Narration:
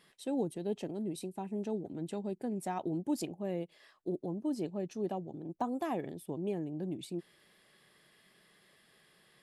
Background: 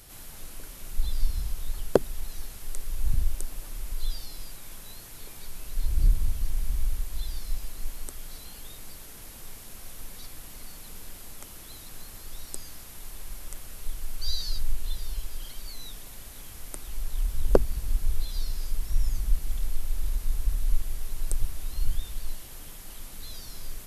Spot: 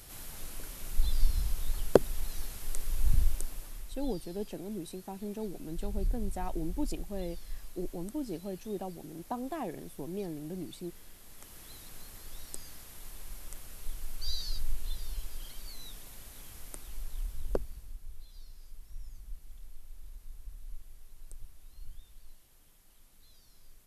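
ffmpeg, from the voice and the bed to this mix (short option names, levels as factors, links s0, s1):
-filter_complex "[0:a]adelay=3700,volume=0.794[s0];[1:a]volume=1.78,afade=t=out:st=3.21:d=0.71:silence=0.316228,afade=t=in:st=11.22:d=0.43:silence=0.530884,afade=t=out:st=16.57:d=1.4:silence=0.188365[s1];[s0][s1]amix=inputs=2:normalize=0"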